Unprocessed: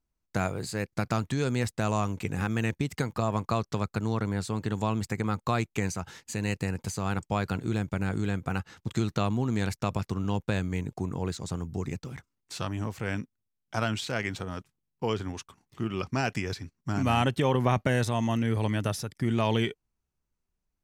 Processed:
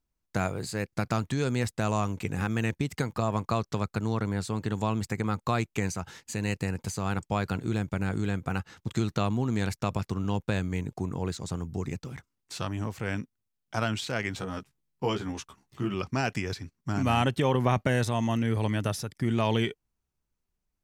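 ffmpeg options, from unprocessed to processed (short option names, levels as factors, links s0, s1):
-filter_complex "[0:a]asettb=1/sr,asplit=3[s0][s1][s2];[s0]atrim=end=14.354[s3];[s1]atrim=start=14.35:end=15.94,asetpts=PTS-STARTPTS,afade=t=in:d=0.004:c=qsin,afade=t=out:st=1.586:d=0.004:c=qsin,asplit=2[s4][s5];[s5]adelay=15,volume=0.668[s6];[s4][s6]amix=inputs=2:normalize=0,atrim=end_sample=70119[s7];[s2]atrim=start=15.936[s8];[s3][s7]acrossfade=d=0.004:c1=hsin:c2=qsin[s9];[s9][s8]acrossfade=d=0.004:c1=qsin:c2=hsin"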